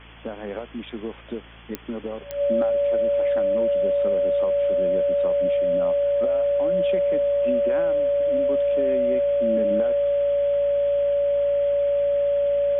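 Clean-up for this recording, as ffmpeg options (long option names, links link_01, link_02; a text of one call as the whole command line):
ffmpeg -i in.wav -af "adeclick=threshold=4,bandreject=frequency=56.5:width_type=h:width=4,bandreject=frequency=113:width_type=h:width=4,bandreject=frequency=169.5:width_type=h:width=4,bandreject=frequency=226:width_type=h:width=4,bandreject=frequency=282.5:width_type=h:width=4,bandreject=frequency=570:width=30,afwtdn=0.0089" out.wav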